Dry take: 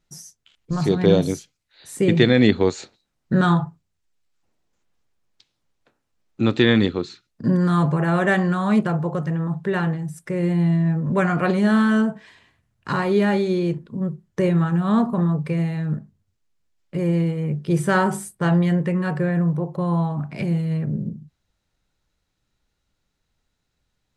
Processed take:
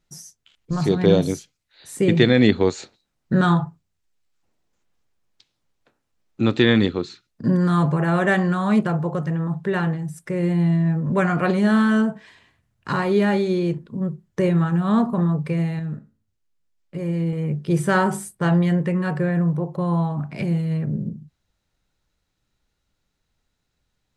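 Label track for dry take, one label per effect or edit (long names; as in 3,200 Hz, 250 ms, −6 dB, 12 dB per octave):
15.790000	17.330000	tuned comb filter 55 Hz, decay 0.38 s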